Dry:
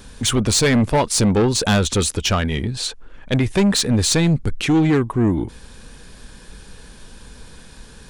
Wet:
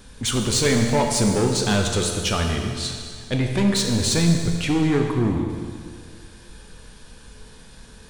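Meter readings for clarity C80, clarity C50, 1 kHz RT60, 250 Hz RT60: 4.5 dB, 3.5 dB, 2.0 s, 2.0 s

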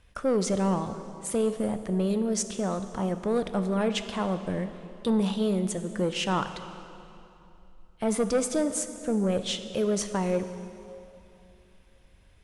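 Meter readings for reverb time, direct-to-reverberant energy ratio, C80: 2.8 s, 9.0 dB, 11.0 dB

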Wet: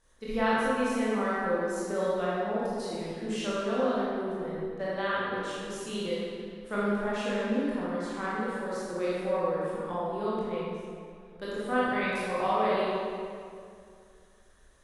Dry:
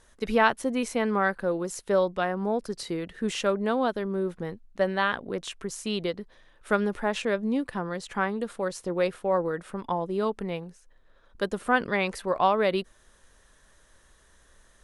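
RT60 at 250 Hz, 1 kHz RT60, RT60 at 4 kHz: 2.6 s, 2.2 s, 1.6 s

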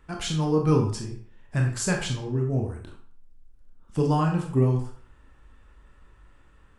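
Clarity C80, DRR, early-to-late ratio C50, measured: 10.0 dB, 1.0 dB, 6.5 dB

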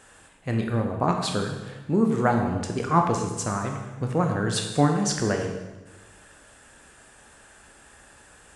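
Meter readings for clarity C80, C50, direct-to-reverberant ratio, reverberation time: 7.0 dB, 5.0 dB, 2.5 dB, 1.2 s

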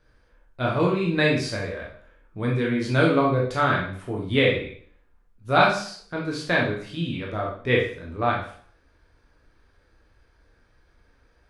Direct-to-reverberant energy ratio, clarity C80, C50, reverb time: −3.5 dB, 9.5 dB, 4.0 dB, 0.55 s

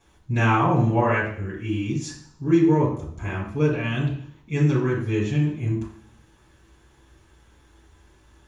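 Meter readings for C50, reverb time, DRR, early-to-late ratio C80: 4.5 dB, 0.55 s, −7.5 dB, 8.0 dB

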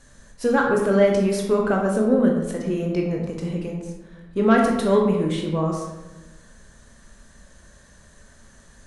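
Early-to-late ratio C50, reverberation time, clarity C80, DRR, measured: 3.0 dB, 1.1 s, 5.5 dB, −0.5 dB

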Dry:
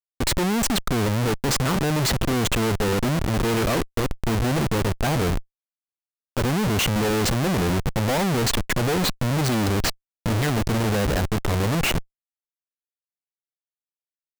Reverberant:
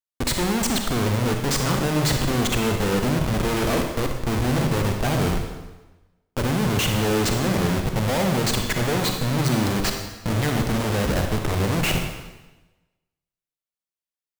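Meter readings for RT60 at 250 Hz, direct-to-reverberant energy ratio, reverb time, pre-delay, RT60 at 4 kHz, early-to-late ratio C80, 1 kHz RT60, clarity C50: 1.2 s, 3.5 dB, 1.1 s, 36 ms, 1.0 s, 6.5 dB, 1.1 s, 4.5 dB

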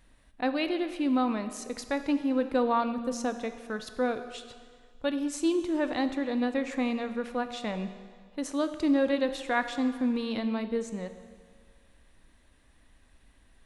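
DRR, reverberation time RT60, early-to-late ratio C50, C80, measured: 9.0 dB, 1.7 s, 10.5 dB, 12.0 dB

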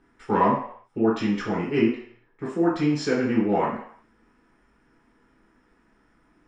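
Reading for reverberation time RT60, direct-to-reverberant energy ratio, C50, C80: 0.65 s, −8.5 dB, 3.5 dB, 7.5 dB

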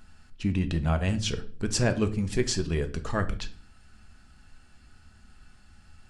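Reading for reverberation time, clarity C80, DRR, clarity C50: non-exponential decay, 20.0 dB, 8.0 dB, 16.0 dB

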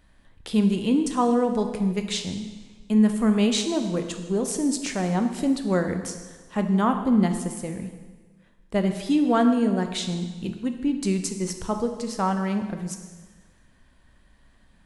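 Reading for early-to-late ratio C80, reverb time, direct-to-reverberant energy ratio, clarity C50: 9.5 dB, 1.4 s, 6.0 dB, 8.0 dB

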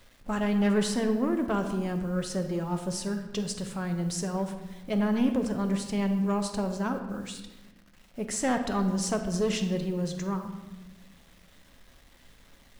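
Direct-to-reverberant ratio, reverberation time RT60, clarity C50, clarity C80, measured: 5.5 dB, 1.1 s, 8.0 dB, 9.5 dB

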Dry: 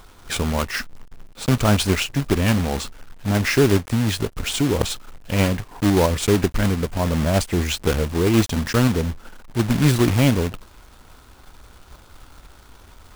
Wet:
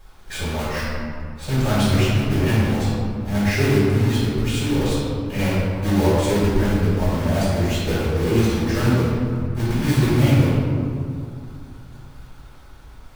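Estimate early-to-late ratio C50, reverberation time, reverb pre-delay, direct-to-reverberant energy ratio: −3.0 dB, 2.4 s, 3 ms, −10.5 dB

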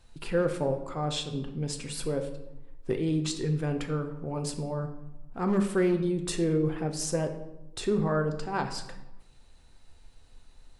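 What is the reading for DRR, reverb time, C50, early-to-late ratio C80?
5.0 dB, 0.95 s, 10.0 dB, 12.5 dB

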